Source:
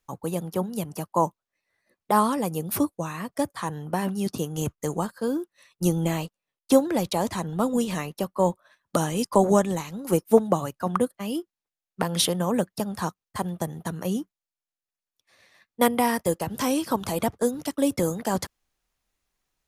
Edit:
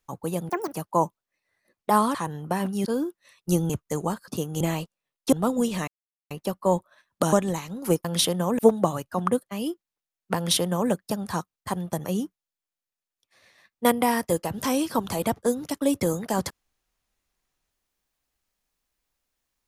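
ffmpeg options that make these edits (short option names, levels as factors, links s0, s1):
-filter_complex "[0:a]asplit=14[s0][s1][s2][s3][s4][s5][s6][s7][s8][s9][s10][s11][s12][s13];[s0]atrim=end=0.494[s14];[s1]atrim=start=0.49:end=0.94,asetpts=PTS-STARTPTS,asetrate=84231,aresample=44100,atrim=end_sample=10390,asetpts=PTS-STARTPTS[s15];[s2]atrim=start=0.936:end=2.362[s16];[s3]atrim=start=3.568:end=4.292[s17];[s4]atrim=start=5.198:end=6.032[s18];[s5]atrim=start=4.618:end=5.202[s19];[s6]atrim=start=4.288:end=4.622[s20];[s7]atrim=start=6.028:end=6.752[s21];[s8]atrim=start=7.488:end=8.04,asetpts=PTS-STARTPTS,afade=t=out:st=0.548:d=0.004:c=hsin,apad=pad_dur=0.43[s22];[s9]atrim=start=8.04:end=9.062,asetpts=PTS-STARTPTS,afade=t=in:d=0.004:c=hsin[s23];[s10]atrim=start=9.548:end=10.272[s24];[s11]atrim=start=12.048:end=12.592[s25];[s12]atrim=start=10.268:end=13.732[s26];[s13]atrim=start=14.008[s27];[s14][s15]acrossfade=d=0.004:c1=hsin:c2=hsin[s28];[s28][s16]acrossfade=d=0.004:c1=hsin:c2=hsin[s29];[s29][s17]acrossfade=d=0.004:c1=hsin:c2=hsin[s30];[s30][s18]acrossfade=d=0.004:c1=hsin:c2=hsin[s31];[s31][s19]acrossfade=d=0.004:c1=hsin:c2=hsin[s32];[s32][s20]acrossfade=d=0.004:c1=hsin:c2=hsin[s33];[s33][s21]acrossfade=d=0.004:c1=hsin:c2=hsin[s34];[s22][s23]concat=n=2:v=0:a=1[s35];[s34][s35]acrossfade=d=0.004:c1=hsin:c2=hsin[s36];[s36][s24]acrossfade=d=0.004:c1=hsin:c2=hsin[s37];[s37][s25]acrossfade=d=0.004:c1=hsin:c2=hsin[s38];[s38][s26]acrossfade=d=0.004:c1=hsin:c2=hsin[s39];[s39][s27]acrossfade=d=0.004:c1=hsin:c2=hsin"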